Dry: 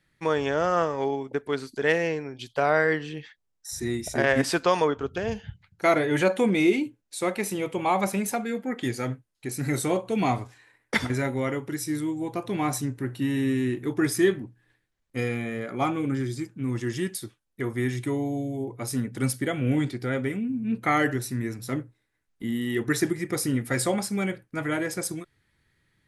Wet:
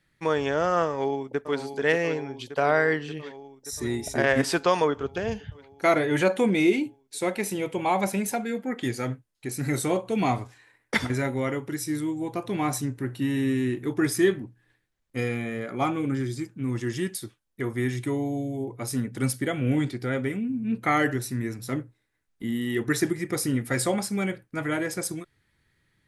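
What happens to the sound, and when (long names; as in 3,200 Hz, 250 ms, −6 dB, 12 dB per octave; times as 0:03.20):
0:00.87–0:01.57: delay throw 580 ms, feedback 75%, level −9.5 dB
0:06.48–0:08.59: notch filter 1,200 Hz, Q 8.2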